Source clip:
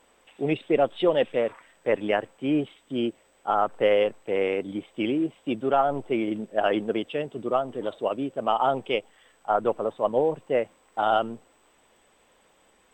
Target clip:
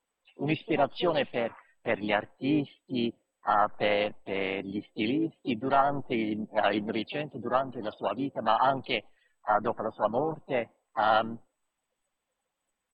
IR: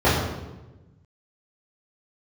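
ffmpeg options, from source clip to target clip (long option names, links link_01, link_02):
-filter_complex "[0:a]afftdn=noise_reduction=22:noise_floor=-48,equalizer=frequency=450:width=1.9:gain=-10,asplit=3[link_01][link_02][link_03];[link_02]asetrate=37084,aresample=44100,atempo=1.18921,volume=-13dB[link_04];[link_03]asetrate=58866,aresample=44100,atempo=0.749154,volume=-11dB[link_05];[link_01][link_04][link_05]amix=inputs=3:normalize=0"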